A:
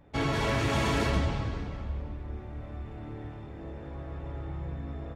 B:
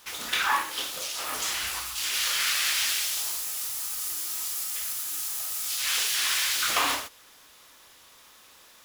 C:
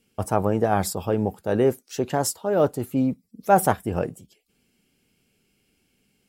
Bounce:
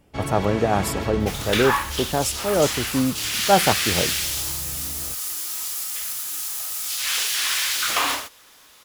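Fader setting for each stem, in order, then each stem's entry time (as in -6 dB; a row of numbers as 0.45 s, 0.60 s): -1.5 dB, +3.0 dB, +0.5 dB; 0.00 s, 1.20 s, 0.00 s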